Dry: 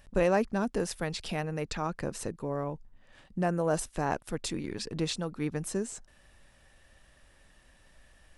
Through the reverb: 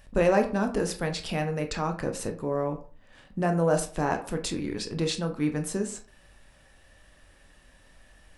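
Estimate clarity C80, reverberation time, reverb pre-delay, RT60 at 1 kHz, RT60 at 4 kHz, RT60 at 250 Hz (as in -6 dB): 16.5 dB, 0.40 s, 15 ms, 0.40 s, 0.25 s, 0.45 s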